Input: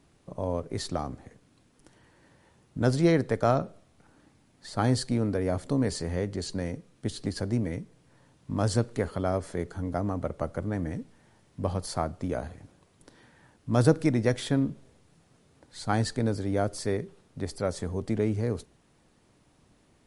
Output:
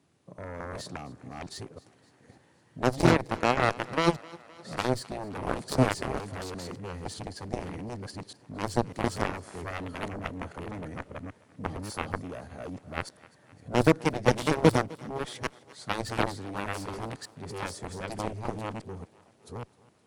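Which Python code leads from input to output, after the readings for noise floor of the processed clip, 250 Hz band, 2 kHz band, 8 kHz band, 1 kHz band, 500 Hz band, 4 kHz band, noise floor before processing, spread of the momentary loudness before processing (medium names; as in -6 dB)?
-62 dBFS, -2.5 dB, +5.5 dB, -1.0 dB, +3.5 dB, -1.0 dB, +2.0 dB, -64 dBFS, 14 LU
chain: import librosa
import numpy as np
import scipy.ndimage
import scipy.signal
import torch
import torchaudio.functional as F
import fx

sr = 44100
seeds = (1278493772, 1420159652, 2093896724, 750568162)

y = fx.reverse_delay(x, sr, ms=595, wet_db=0.0)
y = scipy.signal.sosfilt(scipy.signal.butter(4, 84.0, 'highpass', fs=sr, output='sos'), y)
y = fx.cheby_harmonics(y, sr, harmonics=(7,), levels_db=(-13,), full_scale_db=-7.5)
y = fx.echo_thinned(y, sr, ms=258, feedback_pct=61, hz=180.0, wet_db=-21)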